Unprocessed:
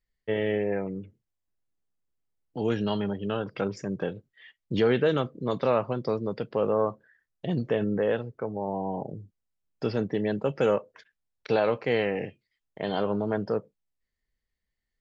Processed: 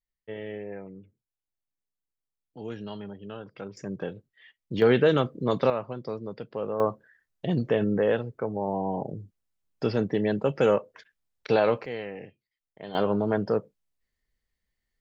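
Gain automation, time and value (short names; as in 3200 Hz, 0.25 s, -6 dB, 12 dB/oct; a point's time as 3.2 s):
-10 dB
from 3.77 s -3 dB
from 4.82 s +3 dB
from 5.7 s -6 dB
from 6.8 s +2 dB
from 11.86 s -9.5 dB
from 12.95 s +2.5 dB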